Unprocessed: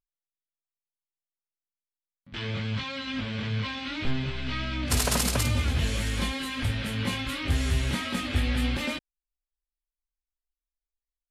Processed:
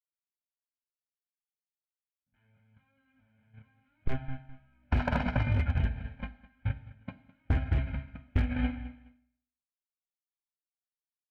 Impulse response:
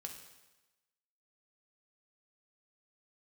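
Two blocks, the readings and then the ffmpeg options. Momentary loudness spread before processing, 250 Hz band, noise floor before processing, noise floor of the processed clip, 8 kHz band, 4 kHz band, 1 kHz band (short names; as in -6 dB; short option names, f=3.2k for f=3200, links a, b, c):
8 LU, -6.0 dB, under -85 dBFS, under -85 dBFS, under -35 dB, -21.0 dB, -5.5 dB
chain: -filter_complex "[0:a]agate=range=-53dB:threshold=-22dB:ratio=16:detection=peak,alimiter=limit=-23.5dB:level=0:latency=1:release=50,lowpass=f=2.2k:w=0.5412,lowpass=f=2.2k:w=1.3066,acontrast=24,aecho=1:1:1.3:0.81,aecho=1:1:208|416:0.1|0.023,asplit=2[a][b];[1:a]atrim=start_sample=2205,asetrate=70560,aresample=44100[c];[b][c]afir=irnorm=-1:irlink=0,volume=5.5dB[d];[a][d]amix=inputs=2:normalize=0,asoftclip=type=hard:threshold=-17.5dB,acompressor=threshold=-29dB:ratio=6,volume=5dB"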